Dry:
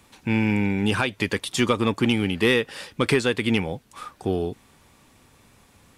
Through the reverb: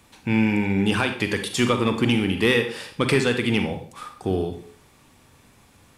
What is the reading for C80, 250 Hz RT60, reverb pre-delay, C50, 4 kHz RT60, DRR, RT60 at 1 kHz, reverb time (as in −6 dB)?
13.0 dB, 0.50 s, 37 ms, 8.0 dB, 0.40 s, 6.0 dB, 0.45 s, 0.50 s